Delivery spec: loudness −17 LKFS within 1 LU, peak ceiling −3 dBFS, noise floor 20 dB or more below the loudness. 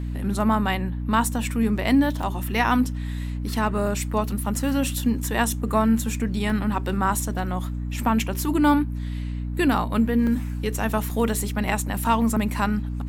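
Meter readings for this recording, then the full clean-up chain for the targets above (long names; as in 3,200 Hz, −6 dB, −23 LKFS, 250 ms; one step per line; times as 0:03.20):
number of dropouts 6; longest dropout 2.3 ms; mains hum 60 Hz; hum harmonics up to 300 Hz; level of the hum −26 dBFS; integrated loudness −24.0 LKFS; sample peak −7.0 dBFS; target loudness −17.0 LKFS
→ repair the gap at 0:02.23/0:04.56/0:06.50/0:10.27/0:11.10/0:11.68, 2.3 ms
mains-hum notches 60/120/180/240/300 Hz
level +7 dB
brickwall limiter −3 dBFS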